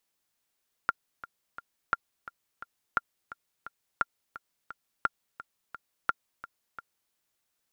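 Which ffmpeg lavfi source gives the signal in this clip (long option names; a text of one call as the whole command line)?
ffmpeg -f lavfi -i "aevalsrc='pow(10,(-11-16.5*gte(mod(t,3*60/173),60/173))/20)*sin(2*PI*1390*mod(t,60/173))*exp(-6.91*mod(t,60/173)/0.03)':duration=6.24:sample_rate=44100" out.wav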